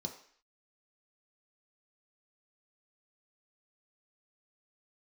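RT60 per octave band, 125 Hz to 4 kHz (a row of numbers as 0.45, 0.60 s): 0.35, 0.50, 0.50, 0.55, 0.65, 0.60 s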